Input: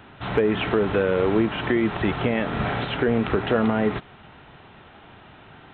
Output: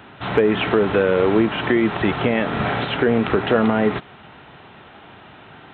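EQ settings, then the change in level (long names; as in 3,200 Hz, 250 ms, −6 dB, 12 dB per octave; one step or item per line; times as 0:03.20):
high-pass filter 120 Hz 6 dB per octave
+4.5 dB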